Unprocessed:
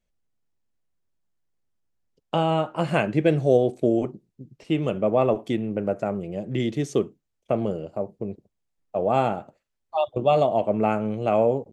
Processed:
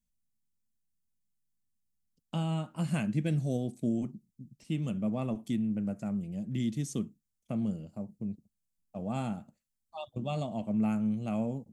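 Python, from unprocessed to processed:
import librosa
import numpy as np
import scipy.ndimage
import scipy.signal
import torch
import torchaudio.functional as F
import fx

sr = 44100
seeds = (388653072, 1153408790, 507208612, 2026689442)

y = fx.curve_eq(x, sr, hz=(130.0, 220.0, 400.0, 2800.0, 9300.0), db=(0, 5, -15, -6, 8))
y = y * 10.0 ** (-5.5 / 20.0)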